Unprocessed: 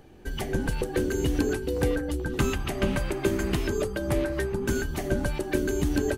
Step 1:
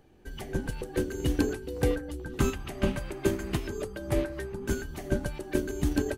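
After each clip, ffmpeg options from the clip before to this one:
-af "agate=range=0.398:threshold=0.0631:ratio=16:detection=peak"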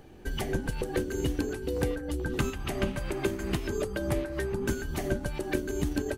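-af "acompressor=threshold=0.0178:ratio=6,volume=2.66"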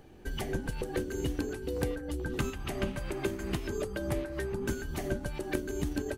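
-af "aeval=exprs='0.224*(cos(1*acos(clip(val(0)/0.224,-1,1)))-cos(1*PI/2))+0.0447*(cos(3*acos(clip(val(0)/0.224,-1,1)))-cos(3*PI/2))+0.0141*(cos(5*acos(clip(val(0)/0.224,-1,1)))-cos(5*PI/2))':c=same"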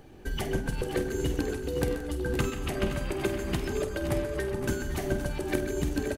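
-af "aecho=1:1:49|129|172|508|522:0.282|0.224|0.141|0.178|0.299,volume=1.41"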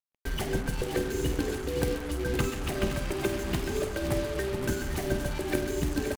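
-af "acrusher=bits=5:mix=0:aa=0.5"

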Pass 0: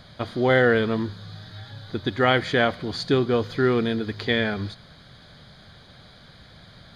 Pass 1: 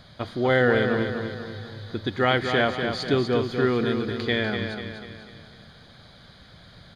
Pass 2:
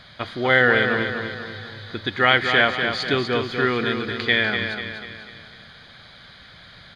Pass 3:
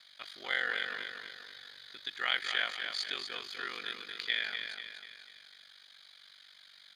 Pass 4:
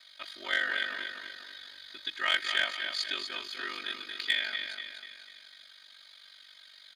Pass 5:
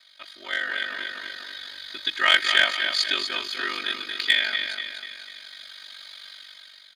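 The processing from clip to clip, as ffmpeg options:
-af "aecho=1:1:245|490|735|980|1225|1470:0.473|0.227|0.109|0.0523|0.0251|0.0121,volume=0.794"
-af "equalizer=f=2200:w=0.56:g=11.5,volume=0.794"
-af "aeval=exprs='val(0)*sin(2*PI*24*n/s)':c=same,aderivative"
-filter_complex "[0:a]aecho=1:1:3.2:0.95,asplit=2[s0][s1];[s1]acrusher=bits=2:mix=0:aa=0.5,volume=0.299[s2];[s0][s2]amix=inputs=2:normalize=0"
-af "dynaudnorm=f=450:g=5:m=4.47"

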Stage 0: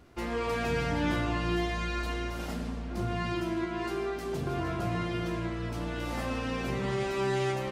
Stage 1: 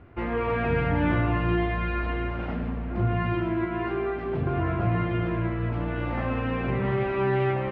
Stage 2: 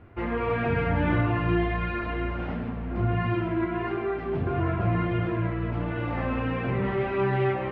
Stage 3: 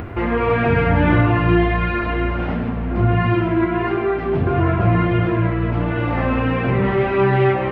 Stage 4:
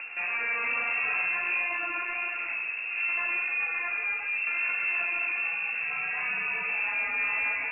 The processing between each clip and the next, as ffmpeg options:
-af "lowpass=f=2500:w=0.5412,lowpass=f=2500:w=1.3066,equalizer=f=100:w=2.9:g=9,volume=1.68"
-af "flanger=delay=8.7:depth=3.8:regen=-39:speed=1.5:shape=triangular,volume=1.5"
-af "acompressor=mode=upward:threshold=0.0355:ratio=2.5,volume=2.82"
-af "bandreject=f=60:t=h:w=6,bandreject=f=120:t=h:w=6,asoftclip=type=tanh:threshold=0.15,lowpass=f=2400:t=q:w=0.5098,lowpass=f=2400:t=q:w=0.6013,lowpass=f=2400:t=q:w=0.9,lowpass=f=2400:t=q:w=2.563,afreqshift=-2800,volume=0.376"

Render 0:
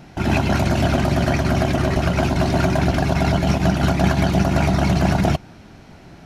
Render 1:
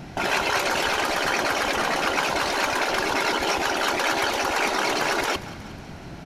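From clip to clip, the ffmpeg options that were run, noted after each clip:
-af "afftfilt=real='re*lt(hypot(re,im),0.282)':imag='im*lt(hypot(re,im),0.282)':win_size=1024:overlap=0.75,aecho=1:1:182|364|546|728|910|1092:0.141|0.0833|0.0492|0.029|0.0171|0.0101,volume=1.58"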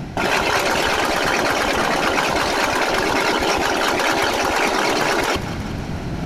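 -af "areverse,acompressor=mode=upward:threshold=0.0501:ratio=2.5,areverse,lowshelf=f=400:g=5.5,volume=1.58"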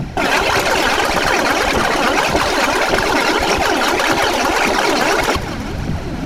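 -af "aphaser=in_gain=1:out_gain=1:delay=4.3:decay=0.47:speed=1.7:type=triangular,volume=1.33"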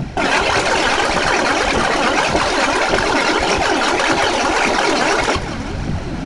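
-filter_complex "[0:a]asplit=2[s0][s1];[s1]adelay=22,volume=0.299[s2];[s0][s2]amix=inputs=2:normalize=0,aresample=22050,aresample=44100,volume=0.891"

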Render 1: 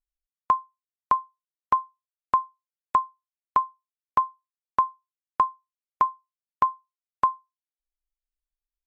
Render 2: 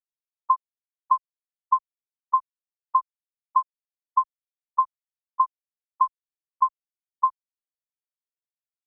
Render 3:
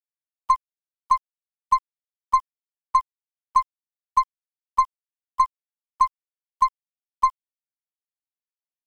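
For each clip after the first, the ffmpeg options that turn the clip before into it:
-af "afftfilt=real='re*gte(hypot(re,im),0.501)':imag='im*gte(hypot(re,im),0.501)':win_size=1024:overlap=0.75,asubboost=boost=10.5:cutoff=88,volume=1.19"
-af "alimiter=limit=0.224:level=0:latency=1:release=154,aeval=exprs='0.224*(cos(1*acos(clip(val(0)/0.224,-1,1)))-cos(1*PI/2))+0.01*(cos(8*acos(clip(val(0)/0.224,-1,1)))-cos(8*PI/2))':c=same,aeval=exprs='val(0)*gte(abs(val(0)),0.00282)':c=same,volume=1.68"

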